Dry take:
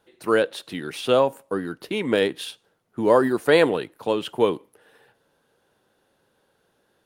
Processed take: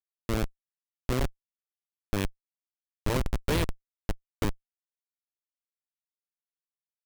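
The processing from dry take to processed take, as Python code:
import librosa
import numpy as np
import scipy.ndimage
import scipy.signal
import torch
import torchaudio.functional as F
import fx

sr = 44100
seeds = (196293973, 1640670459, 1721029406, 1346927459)

y = fx.spec_flatten(x, sr, power=0.61)
y = fx.schmitt(y, sr, flips_db=-12.0)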